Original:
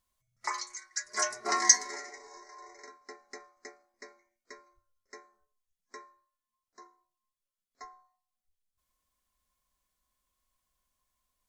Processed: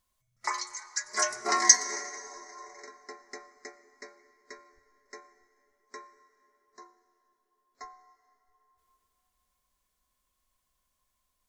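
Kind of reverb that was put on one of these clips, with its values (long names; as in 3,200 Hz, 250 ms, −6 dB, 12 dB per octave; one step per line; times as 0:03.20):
dense smooth reverb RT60 3.8 s, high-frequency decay 0.55×, pre-delay 75 ms, DRR 15 dB
level +2.5 dB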